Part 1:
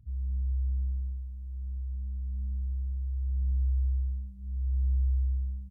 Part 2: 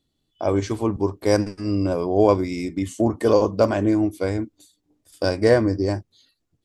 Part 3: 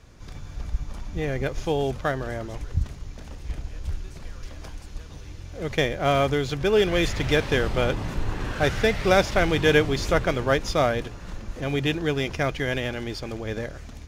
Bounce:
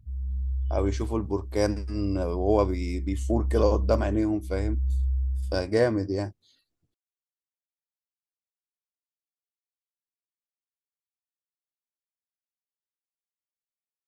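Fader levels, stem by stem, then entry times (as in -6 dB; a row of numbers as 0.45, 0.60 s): +1.0 dB, -6.0 dB, off; 0.00 s, 0.30 s, off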